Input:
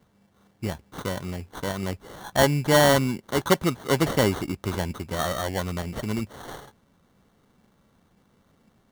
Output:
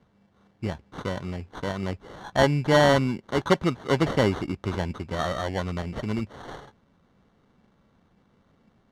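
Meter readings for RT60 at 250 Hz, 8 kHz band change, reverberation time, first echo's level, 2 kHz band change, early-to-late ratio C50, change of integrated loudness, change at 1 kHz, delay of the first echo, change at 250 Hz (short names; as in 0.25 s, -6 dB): none, -10.0 dB, none, none, -1.0 dB, none, -1.0 dB, -0.5 dB, none, 0.0 dB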